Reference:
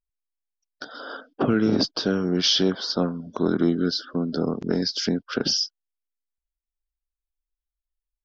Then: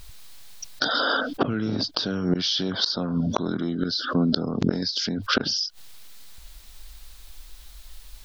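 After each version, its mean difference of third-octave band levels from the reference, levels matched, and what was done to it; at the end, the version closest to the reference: 5.0 dB: fifteen-band EQ 100 Hz +7 dB, 400 Hz -4 dB, 4000 Hz +7 dB; flipped gate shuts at -15 dBFS, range -25 dB; fast leveller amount 70%; gain +3.5 dB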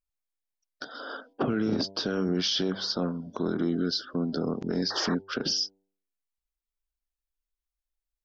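2.5 dB: de-hum 97.25 Hz, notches 10; limiter -16.5 dBFS, peak gain reduction 7.5 dB; painted sound noise, 4.9–5.15, 310–1900 Hz -33 dBFS; gain -2 dB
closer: second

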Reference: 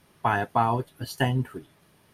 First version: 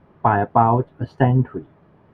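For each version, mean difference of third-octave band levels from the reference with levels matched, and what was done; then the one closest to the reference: 6.5 dB: LPF 1100 Hz 12 dB/oct; gain +9 dB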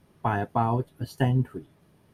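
4.0 dB: tilt shelf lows +5.5 dB, about 760 Hz; gain -2.5 dB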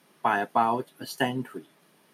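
2.5 dB: HPF 180 Hz 24 dB/oct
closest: third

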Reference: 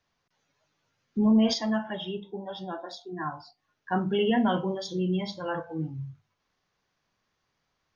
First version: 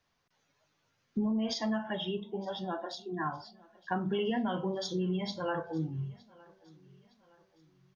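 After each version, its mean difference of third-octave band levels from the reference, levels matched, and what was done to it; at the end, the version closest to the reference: 3.5 dB: compressor 10:1, threshold -28 dBFS, peak gain reduction 11 dB; feedback echo 0.914 s, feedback 44%, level -24 dB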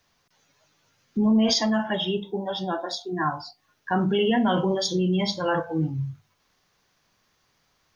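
2.5 dB: high shelf 6000 Hz +9.5 dB; in parallel at -0.5 dB: negative-ratio compressor -30 dBFS, ratio -1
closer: second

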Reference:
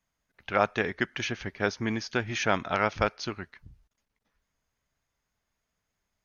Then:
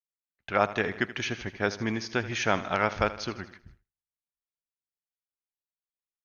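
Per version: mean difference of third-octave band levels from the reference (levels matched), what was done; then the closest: 3.0 dB: feedback echo 79 ms, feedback 58%, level -15.5 dB; expander -45 dBFS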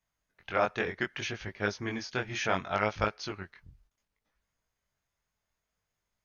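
2.0 dB: bell 250 Hz -4 dB 0.55 oct; chorus 0.66 Hz, delay 18.5 ms, depth 4.8 ms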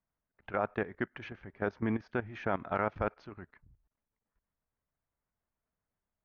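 5.0 dB: LPF 1400 Hz 12 dB/oct; level quantiser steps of 15 dB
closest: second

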